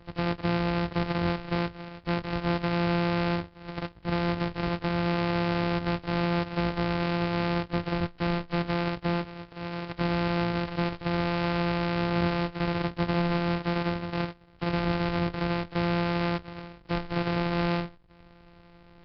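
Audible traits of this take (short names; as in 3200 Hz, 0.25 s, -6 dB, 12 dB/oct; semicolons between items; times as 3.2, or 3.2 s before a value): a buzz of ramps at a fixed pitch in blocks of 256 samples; Nellymoser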